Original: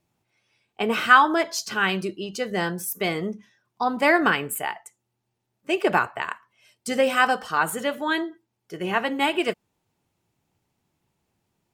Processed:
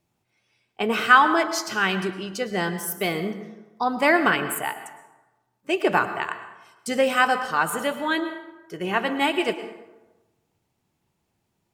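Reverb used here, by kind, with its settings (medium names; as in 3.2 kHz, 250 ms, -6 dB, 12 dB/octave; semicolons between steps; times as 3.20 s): plate-style reverb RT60 1.1 s, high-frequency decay 0.55×, pre-delay 95 ms, DRR 10.5 dB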